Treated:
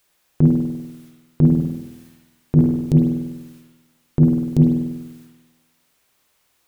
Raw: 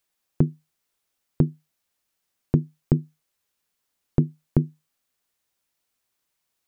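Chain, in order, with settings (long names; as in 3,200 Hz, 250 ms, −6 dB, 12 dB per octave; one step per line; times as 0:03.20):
in parallel at −2 dB: brickwall limiter −12 dBFS, peak gain reduction 7.5 dB
on the sum: transient designer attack −12 dB, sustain +9 dB
0:01.45–0:02.62: flutter between parallel walls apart 11.7 metres, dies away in 0.73 s
spring reverb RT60 1.1 s, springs 49 ms, chirp 30 ms, DRR 0 dB
level +7.5 dB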